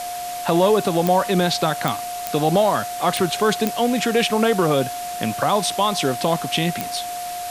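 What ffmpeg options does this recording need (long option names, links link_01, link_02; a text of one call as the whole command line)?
ffmpeg -i in.wav -af "adeclick=threshold=4,bandreject=frequency=710:width=30,afwtdn=0.02" out.wav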